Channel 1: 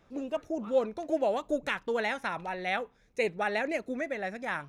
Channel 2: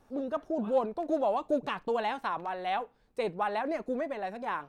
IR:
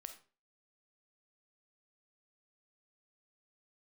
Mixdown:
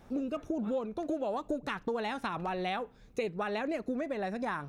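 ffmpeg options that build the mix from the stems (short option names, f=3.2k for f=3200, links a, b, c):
-filter_complex "[0:a]lowshelf=f=340:g=7,volume=2dB[a];[1:a]volume=2.5dB[b];[a][b]amix=inputs=2:normalize=0,acompressor=threshold=-31dB:ratio=6"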